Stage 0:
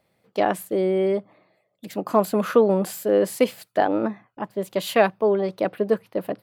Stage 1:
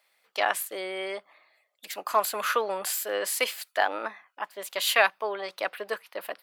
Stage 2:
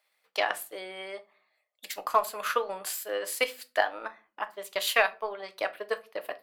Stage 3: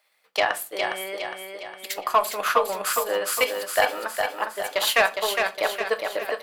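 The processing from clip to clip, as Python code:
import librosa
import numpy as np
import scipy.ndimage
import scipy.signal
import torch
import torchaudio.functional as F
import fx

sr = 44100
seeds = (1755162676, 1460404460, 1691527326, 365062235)

y1 = scipy.signal.sosfilt(scipy.signal.butter(2, 1300.0, 'highpass', fs=sr, output='sos'), x)
y1 = y1 * 10.0 ** (5.5 / 20.0)
y2 = fx.transient(y1, sr, attack_db=7, sustain_db=-4)
y2 = fx.room_shoebox(y2, sr, seeds[0], volume_m3=140.0, walls='furnished', distance_m=0.49)
y2 = y2 * 10.0 ** (-6.0 / 20.0)
y3 = 10.0 ** (-16.0 / 20.0) * np.tanh(y2 / 10.0 ** (-16.0 / 20.0))
y3 = fx.echo_feedback(y3, sr, ms=410, feedback_pct=50, wet_db=-5.0)
y3 = y3 * 10.0 ** (6.5 / 20.0)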